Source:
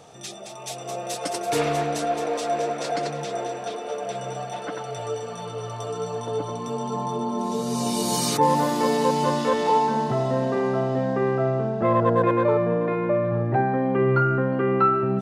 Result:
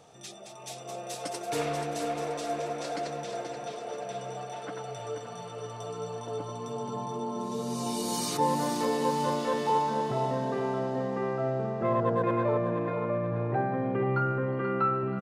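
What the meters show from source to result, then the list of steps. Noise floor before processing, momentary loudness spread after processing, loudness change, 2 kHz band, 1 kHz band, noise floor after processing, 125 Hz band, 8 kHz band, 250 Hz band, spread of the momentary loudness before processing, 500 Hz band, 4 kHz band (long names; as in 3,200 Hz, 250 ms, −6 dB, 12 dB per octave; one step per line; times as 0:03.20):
−36 dBFS, 11 LU, −7.0 dB, −7.0 dB, −6.5 dB, −43 dBFS, −7.0 dB, −6.5 dB, −7.0 dB, 12 LU, −7.0 dB, −6.5 dB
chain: on a send: repeating echo 481 ms, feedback 40%, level −8 dB
on the sum: level −7.5 dB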